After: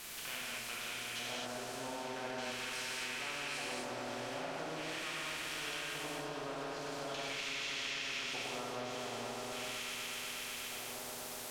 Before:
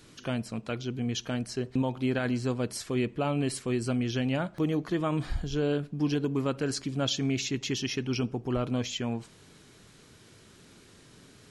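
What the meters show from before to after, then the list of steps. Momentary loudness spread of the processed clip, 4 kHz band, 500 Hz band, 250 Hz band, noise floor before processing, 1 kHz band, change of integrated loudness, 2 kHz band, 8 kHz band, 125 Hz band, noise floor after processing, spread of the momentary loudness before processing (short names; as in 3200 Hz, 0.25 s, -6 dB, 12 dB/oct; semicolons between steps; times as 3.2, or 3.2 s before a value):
4 LU, -2.5 dB, -11.0 dB, -19.0 dB, -56 dBFS, -3.0 dB, -9.0 dB, +0.5 dB, -3.0 dB, -22.5 dB, -45 dBFS, 5 LU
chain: low shelf 420 Hz -7.5 dB; on a send: swelling echo 0.122 s, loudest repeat 5, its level -12.5 dB; on the sum: LFO band-pass square 0.42 Hz 710–2400 Hz; added noise white -62 dBFS; in parallel at -1 dB: compressor, threshold -46 dBFS, peak gain reduction 13 dB; on the sum: harmonic-percussive split percussive -4 dB; treble ducked by the level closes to 2400 Hz, closed at -33 dBFS; non-linear reverb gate 0.29 s flat, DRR -7 dB; spectral compressor 2:1; gain -7 dB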